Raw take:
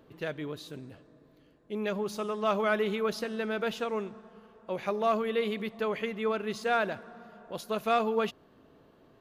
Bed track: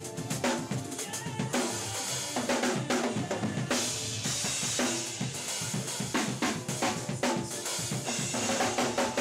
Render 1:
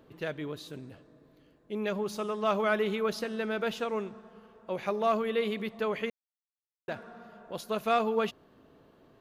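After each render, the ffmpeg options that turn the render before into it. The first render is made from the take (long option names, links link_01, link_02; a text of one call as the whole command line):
ffmpeg -i in.wav -filter_complex "[0:a]asplit=3[link_01][link_02][link_03];[link_01]atrim=end=6.1,asetpts=PTS-STARTPTS,afade=type=out:start_time=6.096:duration=0.004:curve=hsin[link_04];[link_02]atrim=start=6.1:end=6.88,asetpts=PTS-STARTPTS,volume=0[link_05];[link_03]atrim=start=6.88,asetpts=PTS-STARTPTS,afade=type=in:duration=0.004:curve=hsin[link_06];[link_04][link_05][link_06]concat=n=3:v=0:a=1" out.wav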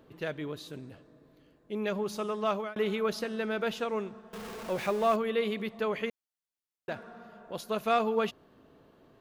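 ffmpeg -i in.wav -filter_complex "[0:a]asettb=1/sr,asplit=3[link_01][link_02][link_03];[link_01]atrim=end=4.334[link_04];[link_02]atrim=start=4.33:end=5.16,asetpts=PTS-STARTPTS,afade=type=in:duration=0.004:curve=qsin,afade=type=out:start_time=0.826:duration=0.004:curve=qsin,aeval=exprs='val(0)+0.5*0.0141*sgn(val(0))':channel_layout=same[link_05];[link_03]atrim=start=5.156[link_06];[link_04][link_05]acrossfade=duration=0.004:curve1=hsin:curve2=qsin[link_07];[link_07][link_06]acrossfade=duration=0.004:curve1=qsin:curve2=hsin,asplit=2[link_08][link_09];[link_08]atrim=end=2.76,asetpts=PTS-STARTPTS,afade=type=out:start_time=2.33:duration=0.43:curve=qsin[link_10];[link_09]atrim=start=2.76,asetpts=PTS-STARTPTS,afade=type=in:duration=0.004:curve=hsin[link_11];[link_10][link_11]concat=n=2:v=0:a=1" out.wav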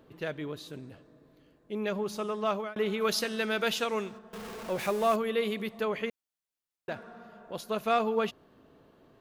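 ffmpeg -i in.wav -filter_complex "[0:a]asplit=3[link_01][link_02][link_03];[link_01]afade=type=out:start_time=3:duration=0.02[link_04];[link_02]highshelf=frequency=2100:gain=12,afade=type=in:start_time=3:duration=0.02,afade=type=out:start_time=4.17:duration=0.02[link_05];[link_03]afade=type=in:start_time=4.17:duration=0.02[link_06];[link_04][link_05][link_06]amix=inputs=3:normalize=0,asettb=1/sr,asplit=3[link_07][link_08][link_09];[link_07]atrim=end=4.794[link_10];[link_08]atrim=start=4.79:end=5.85,asetpts=PTS-STARTPTS,afade=type=in:duration=0.004:curve=qsin,afade=type=out:start_time=1.056:duration=0.004:curve=qsin,equalizer=frequency=12000:width_type=o:width=1.5:gain=7.5[link_11];[link_09]atrim=start=5.846[link_12];[link_10][link_11]acrossfade=duration=0.004:curve1=hsin:curve2=qsin[link_13];[link_13][link_12]acrossfade=duration=0.004:curve1=qsin:curve2=hsin" out.wav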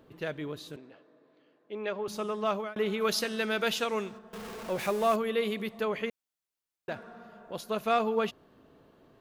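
ffmpeg -i in.wav -filter_complex "[0:a]asettb=1/sr,asplit=3[link_01][link_02][link_03];[link_01]atrim=end=0.764[link_04];[link_02]atrim=start=0.76:end=2.08,asetpts=PTS-STARTPTS,afade=type=in:duration=0.004:curve=qsin,afade=type=out:start_time=1.316:duration=0.004:curve=qsin,highpass=340,lowpass=3700[link_05];[link_03]atrim=start=2.076[link_06];[link_04][link_05]acrossfade=duration=0.004:curve1=hsin:curve2=qsin[link_07];[link_07][link_06]acrossfade=duration=0.004:curve1=qsin:curve2=hsin" out.wav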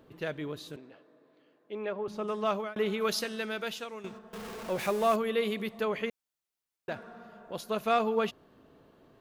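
ffmpeg -i in.wav -filter_complex "[0:a]asettb=1/sr,asplit=3[link_01][link_02][link_03];[link_01]atrim=end=1.854[link_04];[link_02]atrim=start=1.85:end=2.28,asetpts=PTS-STARTPTS,afade=type=in:duration=0.004:curve=qsin,afade=type=out:start_time=0.426:duration=0.004:curve=qsin,lowpass=frequency=1500:poles=1[link_05];[link_03]atrim=start=2.276[link_06];[link_04][link_05]acrossfade=duration=0.004:curve1=hsin:curve2=qsin[link_07];[link_07][link_06]acrossfade=duration=0.004:curve1=qsin:curve2=hsin,asplit=2[link_08][link_09];[link_08]atrim=end=4.04,asetpts=PTS-STARTPTS,afade=type=out:start_time=2.85:duration=1.19:silence=0.211349[link_10];[link_09]atrim=start=4.04,asetpts=PTS-STARTPTS,afade=type=in:duration=0.004:curve=hsin:silence=0.211349[link_11];[link_10][link_11]concat=n=2:v=0:a=1" out.wav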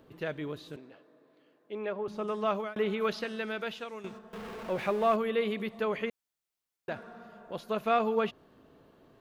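ffmpeg -i in.wav -filter_complex "[0:a]acrossover=split=3700[link_01][link_02];[link_02]acompressor=threshold=-58dB:ratio=4:attack=1:release=60[link_03];[link_01][link_03]amix=inputs=2:normalize=0" out.wav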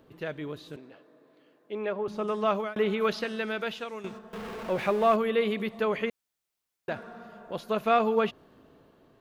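ffmpeg -i in.wav -af "dynaudnorm=framelen=330:gausssize=5:maxgain=3.5dB" out.wav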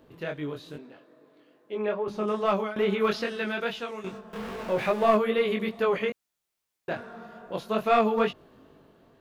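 ffmpeg -i in.wav -filter_complex "[0:a]asplit=2[link_01][link_02];[link_02]aeval=exprs='clip(val(0),-1,0.0944)':channel_layout=same,volume=-3dB[link_03];[link_01][link_03]amix=inputs=2:normalize=0,flanger=delay=20:depth=4.1:speed=2.4" out.wav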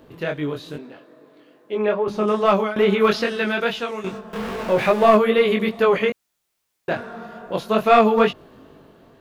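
ffmpeg -i in.wav -af "volume=8dB,alimiter=limit=-3dB:level=0:latency=1" out.wav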